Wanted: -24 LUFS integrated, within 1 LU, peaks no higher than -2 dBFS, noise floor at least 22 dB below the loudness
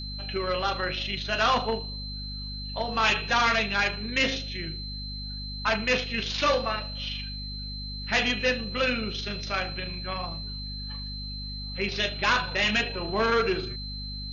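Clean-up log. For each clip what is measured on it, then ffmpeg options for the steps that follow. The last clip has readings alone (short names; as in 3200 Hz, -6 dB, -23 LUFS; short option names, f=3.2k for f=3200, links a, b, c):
hum 50 Hz; harmonics up to 250 Hz; hum level -35 dBFS; steady tone 4100 Hz; tone level -37 dBFS; loudness -27.5 LUFS; peak -13.5 dBFS; loudness target -24.0 LUFS
-> -af "bandreject=f=50:t=h:w=6,bandreject=f=100:t=h:w=6,bandreject=f=150:t=h:w=6,bandreject=f=200:t=h:w=6,bandreject=f=250:t=h:w=6"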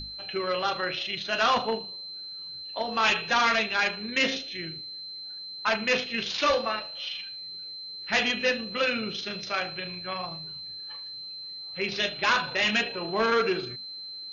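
hum none; steady tone 4100 Hz; tone level -37 dBFS
-> -af "bandreject=f=4.1k:w=30"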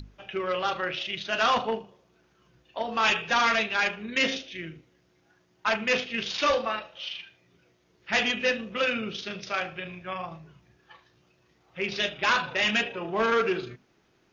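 steady tone none; loudness -27.0 LUFS; peak -14.0 dBFS; loudness target -24.0 LUFS
-> -af "volume=3dB"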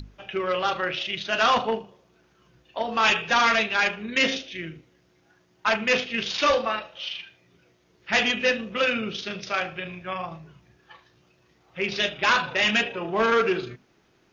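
loudness -24.0 LUFS; peak -11.0 dBFS; noise floor -63 dBFS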